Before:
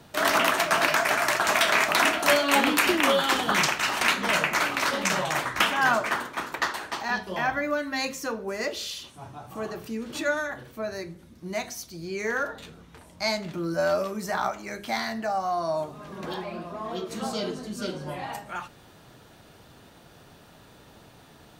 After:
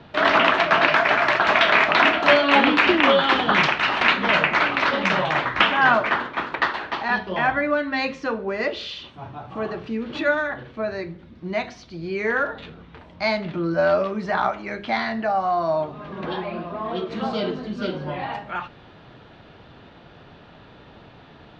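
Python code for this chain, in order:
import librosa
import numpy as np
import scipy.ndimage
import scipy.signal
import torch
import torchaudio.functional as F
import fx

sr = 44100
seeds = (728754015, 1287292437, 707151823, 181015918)

y = scipy.signal.sosfilt(scipy.signal.butter(4, 3700.0, 'lowpass', fs=sr, output='sos'), x)
y = y * 10.0 ** (5.5 / 20.0)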